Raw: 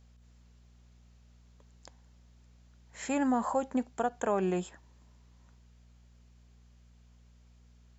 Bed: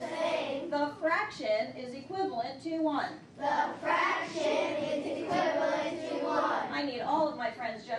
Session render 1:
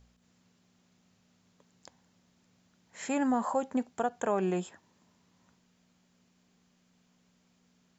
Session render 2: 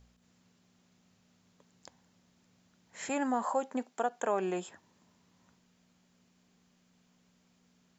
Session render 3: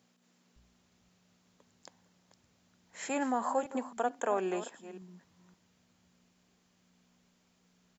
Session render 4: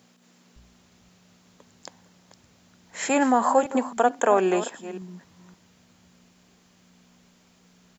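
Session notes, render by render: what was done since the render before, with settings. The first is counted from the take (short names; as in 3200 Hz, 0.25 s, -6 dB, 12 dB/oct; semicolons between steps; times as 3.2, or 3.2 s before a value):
de-hum 60 Hz, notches 2
3.09–4.68 Bessel high-pass 340 Hz
reverse delay 0.262 s, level -13 dB; bands offset in time highs, lows 0.56 s, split 160 Hz
gain +11.5 dB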